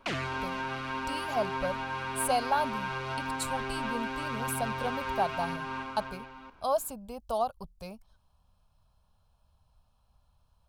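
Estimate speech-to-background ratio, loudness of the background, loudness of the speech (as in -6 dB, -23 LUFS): 1.0 dB, -35.0 LUFS, -34.0 LUFS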